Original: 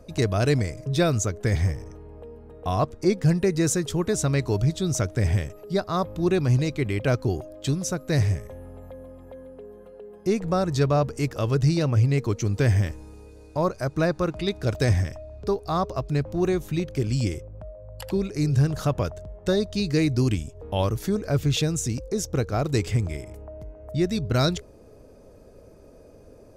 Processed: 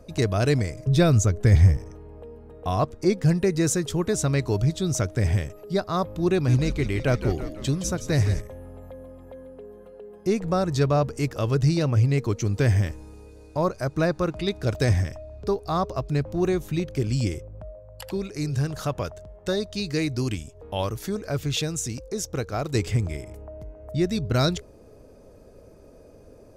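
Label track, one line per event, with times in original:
0.870000	1.770000	bass shelf 150 Hz +11 dB
6.310000	8.410000	frequency-shifting echo 167 ms, feedback 55%, per repeat -80 Hz, level -10 dB
17.790000	22.750000	bass shelf 490 Hz -5.5 dB

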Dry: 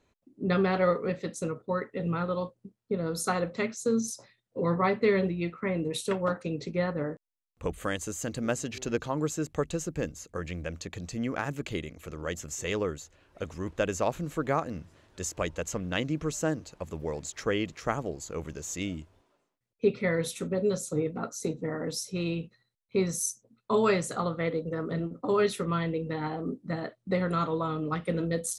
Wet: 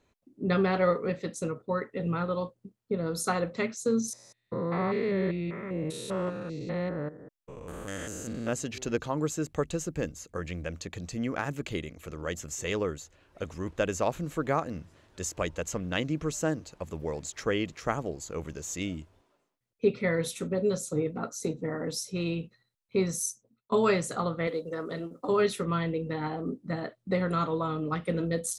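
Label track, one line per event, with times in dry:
4.130000	8.530000	spectrogram pixelated in time every 200 ms
23.010000	23.720000	fade out equal-power, to -22.5 dB
24.470000	25.290000	tone controls bass -10 dB, treble +9 dB

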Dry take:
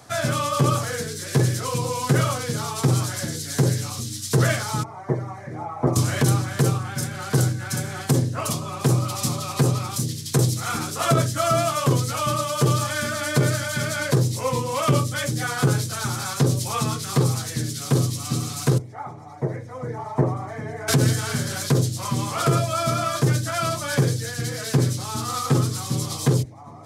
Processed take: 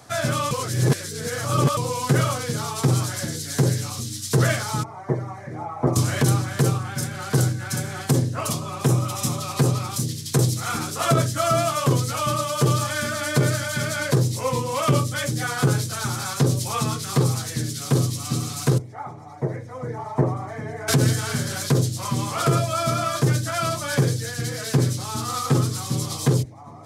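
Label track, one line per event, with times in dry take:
0.510000	1.770000	reverse
8.840000	9.410000	band-stop 4.5 kHz, Q 6.4

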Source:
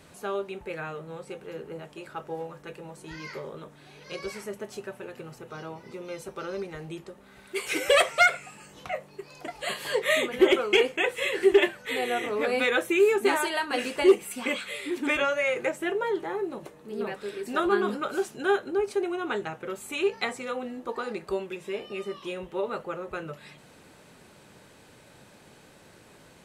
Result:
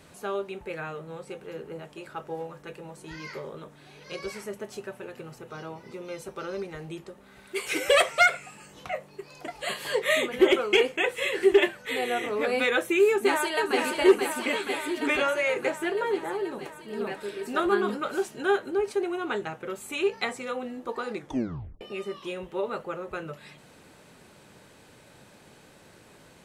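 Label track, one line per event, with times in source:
13.090000	13.780000	echo throw 480 ms, feedback 75%, level -4.5 dB
21.150000	21.150000	tape stop 0.66 s

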